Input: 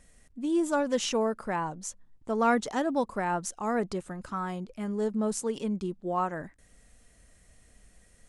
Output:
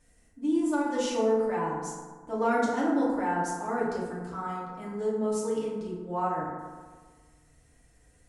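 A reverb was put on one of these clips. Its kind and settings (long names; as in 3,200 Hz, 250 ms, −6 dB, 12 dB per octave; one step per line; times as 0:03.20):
feedback delay network reverb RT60 1.5 s, low-frequency decay 1.05×, high-frequency decay 0.4×, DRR −7.5 dB
level −9.5 dB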